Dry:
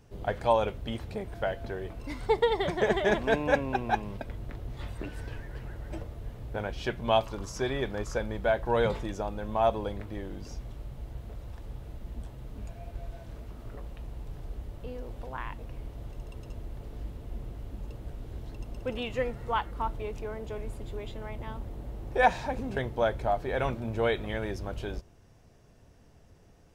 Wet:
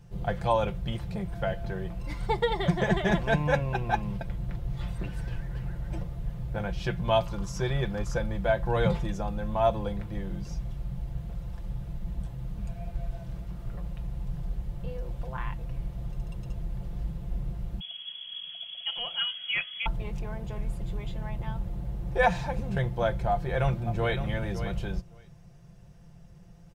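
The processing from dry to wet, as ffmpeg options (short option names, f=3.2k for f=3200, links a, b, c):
-filter_complex "[0:a]asettb=1/sr,asplit=3[a][b][c];[a]atrim=end=17.804[d];[b]atrim=start=17.8:end=19.86,asetpts=PTS-STARTPTS,afade=t=in:d=0.004:c=qsin,afade=t=out:st=2.056:d=0.004:c=qsin,lowpass=f=2.9k:t=q:w=0.5098,lowpass=f=2.9k:t=q:w=0.6013,lowpass=f=2.9k:t=q:w=0.9,lowpass=f=2.9k:t=q:w=2.563,afreqshift=-3400[e];[c]atrim=start=19.856[f];[d][e]acrossfade=d=0.004:c1=hsin:c2=qsin[g];[g][f]acrossfade=d=0.004:c1=qsin:c2=hsin,asplit=2[h][i];[i]afade=t=in:st=23.3:d=0.01,afade=t=out:st=24.22:d=0.01,aecho=0:1:560|1120:0.298538|0.0298538[j];[h][j]amix=inputs=2:normalize=0,lowshelf=f=210:t=q:w=3:g=6,aecho=1:1:5.8:0.54,volume=-1dB"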